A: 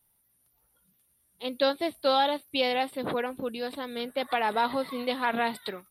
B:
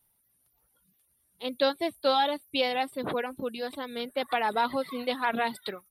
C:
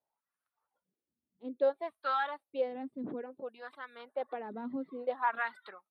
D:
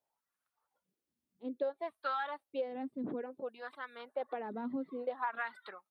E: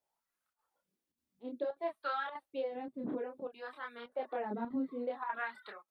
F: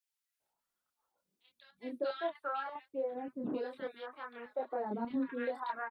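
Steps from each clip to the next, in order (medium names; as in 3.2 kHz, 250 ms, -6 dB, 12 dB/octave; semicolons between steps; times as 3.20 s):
reverb removal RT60 0.53 s
dynamic bell 1.7 kHz, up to +5 dB, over -42 dBFS, Q 2; wah-wah 0.59 Hz 230–1400 Hz, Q 3.1
compression 6:1, threshold -33 dBFS, peak gain reduction 9.5 dB; trim +1 dB
chorus voices 6, 0.46 Hz, delay 27 ms, depth 3.2 ms; square tremolo 1.7 Hz, depth 60%, duty 90%; trim +3.5 dB
bands offset in time highs, lows 400 ms, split 1.7 kHz; trim +1 dB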